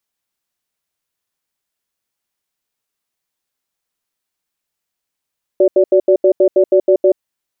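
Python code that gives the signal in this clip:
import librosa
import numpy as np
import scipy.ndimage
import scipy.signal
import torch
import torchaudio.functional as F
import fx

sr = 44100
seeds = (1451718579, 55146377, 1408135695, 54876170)

y = fx.cadence(sr, length_s=1.56, low_hz=372.0, high_hz=578.0, on_s=0.08, off_s=0.08, level_db=-9.5)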